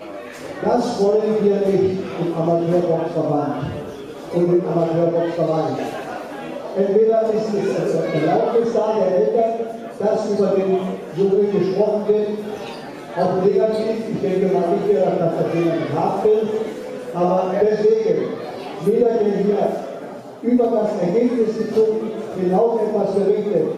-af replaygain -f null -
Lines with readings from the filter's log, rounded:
track_gain = -0.2 dB
track_peak = 0.480